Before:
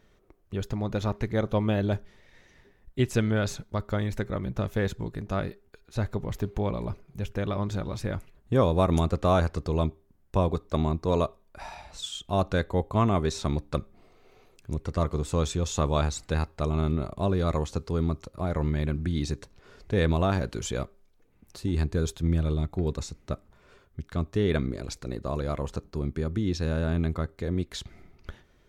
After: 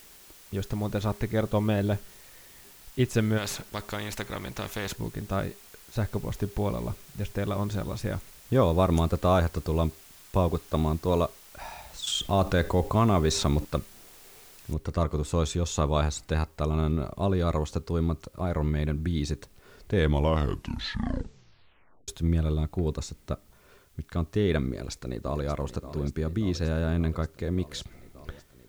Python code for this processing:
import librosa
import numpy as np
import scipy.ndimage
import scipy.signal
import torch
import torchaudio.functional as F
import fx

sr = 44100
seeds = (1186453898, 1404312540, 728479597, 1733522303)

y = fx.spectral_comp(x, sr, ratio=2.0, at=(3.37, 4.95), fade=0.02)
y = fx.env_flatten(y, sr, amount_pct=50, at=(12.07, 13.65))
y = fx.noise_floor_step(y, sr, seeds[0], at_s=14.73, before_db=-52, after_db=-66, tilt_db=0.0)
y = fx.echo_throw(y, sr, start_s=24.66, length_s=0.83, ms=580, feedback_pct=80, wet_db=-12.5)
y = fx.edit(y, sr, fx.tape_stop(start_s=19.93, length_s=2.15), tone=tone)